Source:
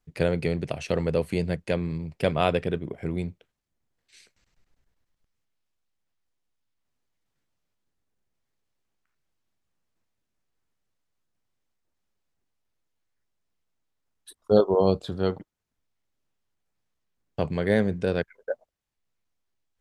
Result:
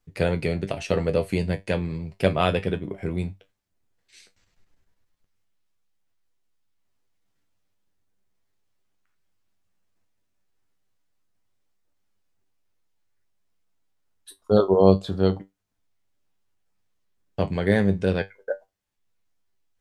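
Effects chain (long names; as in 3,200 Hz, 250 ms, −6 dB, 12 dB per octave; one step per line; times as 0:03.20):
tuned comb filter 97 Hz, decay 0.17 s, harmonics all, mix 80%
level +8 dB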